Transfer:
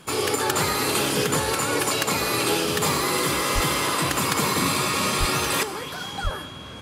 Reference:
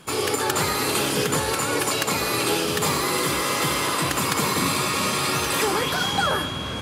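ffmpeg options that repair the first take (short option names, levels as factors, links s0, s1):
-filter_complex "[0:a]asplit=3[s0][s1][s2];[s0]afade=t=out:st=3.54:d=0.02[s3];[s1]highpass=f=140:w=0.5412,highpass=f=140:w=1.3066,afade=t=in:st=3.54:d=0.02,afade=t=out:st=3.66:d=0.02[s4];[s2]afade=t=in:st=3.66:d=0.02[s5];[s3][s4][s5]amix=inputs=3:normalize=0,asplit=3[s6][s7][s8];[s6]afade=t=out:st=5.19:d=0.02[s9];[s7]highpass=f=140:w=0.5412,highpass=f=140:w=1.3066,afade=t=in:st=5.19:d=0.02,afade=t=out:st=5.31:d=0.02[s10];[s8]afade=t=in:st=5.31:d=0.02[s11];[s9][s10][s11]amix=inputs=3:normalize=0,asplit=3[s12][s13][s14];[s12]afade=t=out:st=6.23:d=0.02[s15];[s13]highpass=f=140:w=0.5412,highpass=f=140:w=1.3066,afade=t=in:st=6.23:d=0.02,afade=t=out:st=6.35:d=0.02[s16];[s14]afade=t=in:st=6.35:d=0.02[s17];[s15][s16][s17]amix=inputs=3:normalize=0,asetnsamples=n=441:p=0,asendcmd='5.63 volume volume 9dB',volume=1"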